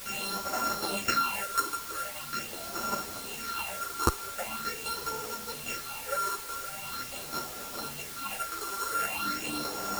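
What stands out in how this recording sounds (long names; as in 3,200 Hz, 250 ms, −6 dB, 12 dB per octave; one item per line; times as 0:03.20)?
a buzz of ramps at a fixed pitch in blocks of 32 samples
phaser sweep stages 6, 0.43 Hz, lowest notch 170–3,300 Hz
a quantiser's noise floor 8 bits, dither triangular
a shimmering, thickened sound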